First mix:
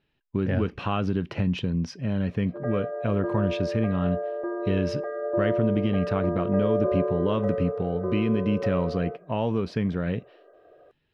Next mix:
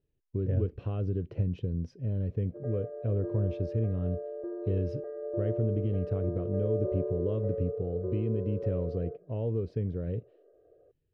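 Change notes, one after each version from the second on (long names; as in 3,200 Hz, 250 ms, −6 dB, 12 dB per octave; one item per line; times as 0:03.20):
master: add drawn EQ curve 110 Hz 0 dB, 200 Hz −12 dB, 470 Hz −3 dB, 890 Hz −22 dB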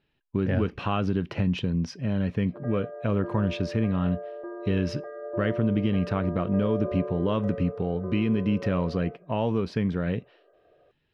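background −7.0 dB
master: remove drawn EQ curve 110 Hz 0 dB, 200 Hz −12 dB, 470 Hz −3 dB, 890 Hz −22 dB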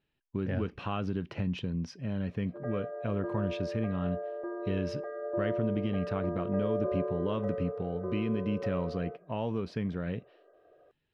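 speech −7.0 dB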